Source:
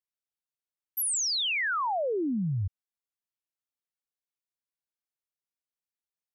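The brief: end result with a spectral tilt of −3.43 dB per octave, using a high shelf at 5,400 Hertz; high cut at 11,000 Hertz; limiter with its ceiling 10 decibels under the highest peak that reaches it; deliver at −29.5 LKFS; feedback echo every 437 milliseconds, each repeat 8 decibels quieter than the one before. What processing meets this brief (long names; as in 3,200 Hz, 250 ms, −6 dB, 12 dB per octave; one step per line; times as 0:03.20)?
low-pass filter 11,000 Hz
high-shelf EQ 5,400 Hz +7.5 dB
brickwall limiter −31 dBFS
repeating echo 437 ms, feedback 40%, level −8 dB
level +4 dB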